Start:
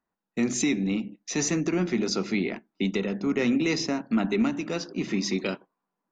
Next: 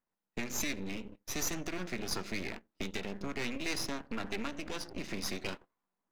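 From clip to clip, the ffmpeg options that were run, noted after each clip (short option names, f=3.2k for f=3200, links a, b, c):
-filter_complex "[0:a]acrossover=split=770[a][b];[a]acompressor=threshold=-32dB:ratio=6[c];[c][b]amix=inputs=2:normalize=0,aeval=exprs='max(val(0),0)':c=same,volume=-1.5dB"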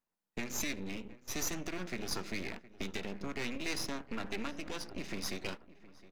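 -filter_complex "[0:a]asplit=2[a][b];[b]adelay=715,lowpass=f=2.2k:p=1,volume=-18dB,asplit=2[c][d];[d]adelay=715,lowpass=f=2.2k:p=1,volume=0.43,asplit=2[e][f];[f]adelay=715,lowpass=f=2.2k:p=1,volume=0.43,asplit=2[g][h];[h]adelay=715,lowpass=f=2.2k:p=1,volume=0.43[i];[a][c][e][g][i]amix=inputs=5:normalize=0,volume=-1.5dB"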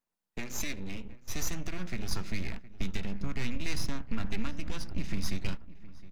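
-af "asubboost=boost=8.5:cutoff=150"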